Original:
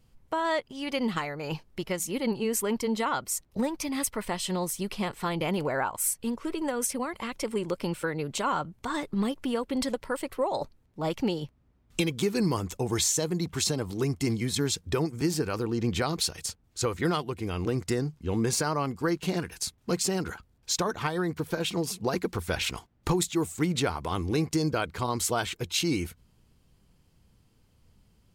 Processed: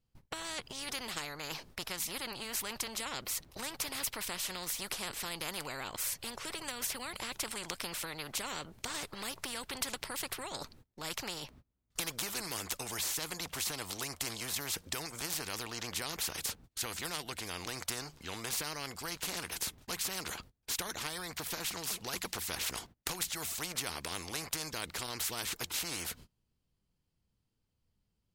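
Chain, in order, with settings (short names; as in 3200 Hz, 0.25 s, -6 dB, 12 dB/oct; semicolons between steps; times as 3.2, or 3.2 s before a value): gate -52 dBFS, range -29 dB; bell 4300 Hz +3 dB; spectral compressor 4:1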